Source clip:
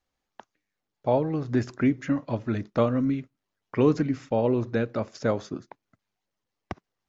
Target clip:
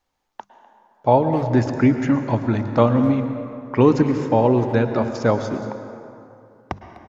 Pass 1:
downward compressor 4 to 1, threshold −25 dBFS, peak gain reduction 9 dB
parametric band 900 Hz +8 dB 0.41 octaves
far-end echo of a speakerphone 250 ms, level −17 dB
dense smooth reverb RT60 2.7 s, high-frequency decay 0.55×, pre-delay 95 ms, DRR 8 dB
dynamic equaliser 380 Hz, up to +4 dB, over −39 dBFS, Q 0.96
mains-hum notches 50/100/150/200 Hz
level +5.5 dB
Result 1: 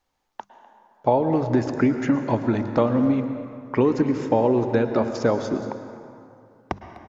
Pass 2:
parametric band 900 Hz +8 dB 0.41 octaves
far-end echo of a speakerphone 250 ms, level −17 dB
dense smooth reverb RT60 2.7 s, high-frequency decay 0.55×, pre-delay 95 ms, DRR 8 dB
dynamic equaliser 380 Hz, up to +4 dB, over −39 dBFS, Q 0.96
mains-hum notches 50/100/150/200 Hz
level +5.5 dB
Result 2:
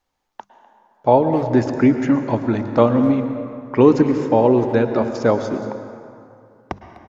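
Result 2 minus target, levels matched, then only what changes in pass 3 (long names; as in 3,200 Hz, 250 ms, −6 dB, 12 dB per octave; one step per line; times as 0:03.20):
125 Hz band −4.5 dB
change: dynamic equaliser 100 Hz, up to +4 dB, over −39 dBFS, Q 0.96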